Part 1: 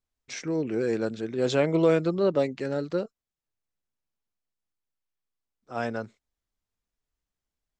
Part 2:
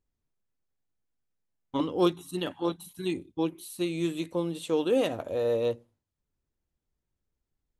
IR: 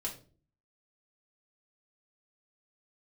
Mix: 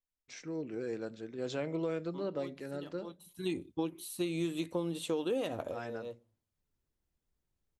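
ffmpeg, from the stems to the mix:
-filter_complex "[0:a]volume=-13dB,asplit=3[link_01][link_02][link_03];[link_02]volume=-12dB[link_04];[1:a]adelay=400,volume=-1dB[link_05];[link_03]apad=whole_len=361290[link_06];[link_05][link_06]sidechaincompress=threshold=-55dB:ratio=10:attack=9.8:release=390[link_07];[2:a]atrim=start_sample=2205[link_08];[link_04][link_08]afir=irnorm=-1:irlink=0[link_09];[link_01][link_07][link_09]amix=inputs=3:normalize=0,acompressor=threshold=-30dB:ratio=6"

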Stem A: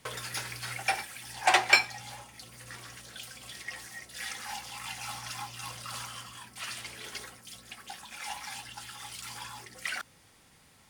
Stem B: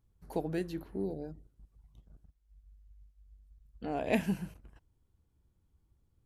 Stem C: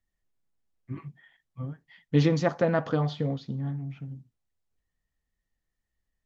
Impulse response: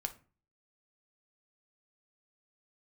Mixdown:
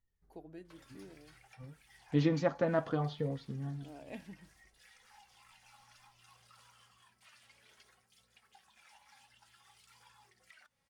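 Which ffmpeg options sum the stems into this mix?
-filter_complex "[0:a]asoftclip=type=hard:threshold=-16dB,equalizer=frequency=300:width_type=o:width=0.28:gain=-14.5,acompressor=threshold=-39dB:ratio=6,adelay=650,volume=-14dB[link_01];[1:a]volume=-12.5dB,asplit=2[link_02][link_03];[2:a]volume=-2dB[link_04];[link_03]apad=whole_len=275645[link_05];[link_04][link_05]sidechaincompress=threshold=-59dB:ratio=8:attack=16:release=918[link_06];[link_01][link_02][link_06]amix=inputs=3:normalize=0,highshelf=frequency=5400:gain=-5.5,flanger=delay=2:depth=1.7:regen=59:speed=0.6:shape=triangular"

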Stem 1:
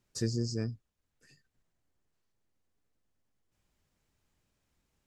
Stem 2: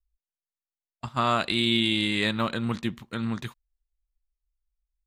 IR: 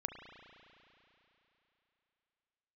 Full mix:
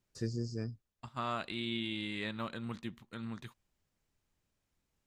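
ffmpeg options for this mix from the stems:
-filter_complex "[0:a]volume=-4.5dB[link_01];[1:a]volume=-12.5dB[link_02];[link_01][link_02]amix=inputs=2:normalize=0,acrossover=split=3700[link_03][link_04];[link_04]acompressor=threshold=-52dB:ratio=4:attack=1:release=60[link_05];[link_03][link_05]amix=inputs=2:normalize=0"

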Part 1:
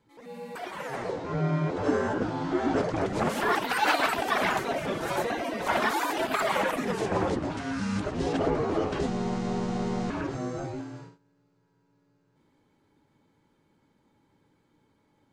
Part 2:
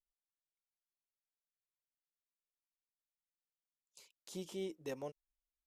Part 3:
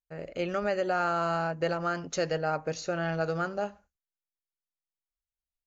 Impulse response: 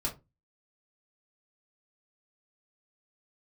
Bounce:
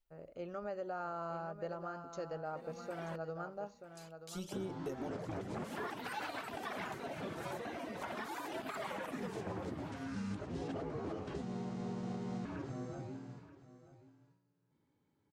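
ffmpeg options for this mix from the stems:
-filter_complex "[0:a]highpass=94,lowshelf=frequency=170:gain=10.5,adelay=2350,volume=-13.5dB,asplit=3[link_01][link_02][link_03];[link_01]atrim=end=3.16,asetpts=PTS-STARTPTS,afade=type=out:start_time=3.156:duration=0.004:curve=hsin[link_04];[link_02]atrim=start=3.16:end=4.52,asetpts=PTS-STARTPTS,volume=0[link_05];[link_03]atrim=start=4.52,asetpts=PTS-STARTPTS,afade=type=in:duration=0.004:curve=hsin[link_06];[link_04][link_05][link_06]concat=n=3:v=0:a=1,asplit=2[link_07][link_08];[link_08]volume=-16dB[link_09];[1:a]aphaser=in_gain=1:out_gain=1:delay=3.7:decay=0.54:speed=0.42:type=sinusoidal,volume=-1dB,asplit=3[link_10][link_11][link_12];[link_11]volume=-9dB[link_13];[link_12]volume=-14dB[link_14];[2:a]highshelf=frequency=1500:width_type=q:width=1.5:gain=-7,volume=-13dB,asplit=2[link_15][link_16];[link_16]volume=-10dB[link_17];[3:a]atrim=start_sample=2205[link_18];[link_13][link_18]afir=irnorm=-1:irlink=0[link_19];[link_09][link_14][link_17]amix=inputs=3:normalize=0,aecho=0:1:932:1[link_20];[link_07][link_10][link_15][link_19][link_20]amix=inputs=5:normalize=0,alimiter=level_in=7.5dB:limit=-24dB:level=0:latency=1:release=246,volume=-7.5dB"

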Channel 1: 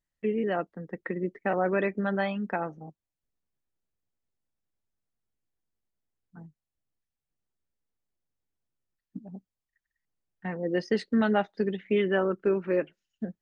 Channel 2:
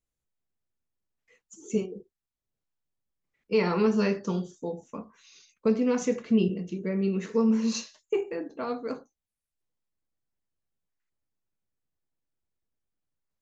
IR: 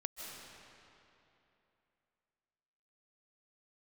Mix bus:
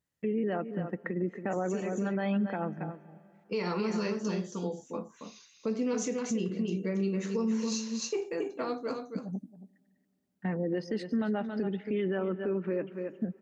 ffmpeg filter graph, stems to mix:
-filter_complex "[0:a]lowshelf=frequency=360:gain=9,volume=-0.5dB,asplit=3[link_01][link_02][link_03];[link_02]volume=-21.5dB[link_04];[link_03]volume=-14dB[link_05];[1:a]adynamicequalizer=threshold=0.00282:dfrequency=4200:dqfactor=0.7:tfrequency=4200:tqfactor=0.7:attack=5:release=100:ratio=0.375:range=3.5:mode=boostabove:tftype=highshelf,volume=-1dB,asplit=3[link_06][link_07][link_08];[link_07]volume=-6.5dB[link_09];[link_08]apad=whole_len=591757[link_10];[link_01][link_10]sidechaincompress=threshold=-34dB:ratio=8:attack=6.5:release=390[link_11];[2:a]atrim=start_sample=2205[link_12];[link_04][link_12]afir=irnorm=-1:irlink=0[link_13];[link_05][link_09]amix=inputs=2:normalize=0,aecho=0:1:275:1[link_14];[link_11][link_06][link_13][link_14]amix=inputs=4:normalize=0,highpass=110,alimiter=limit=-23dB:level=0:latency=1:release=161"

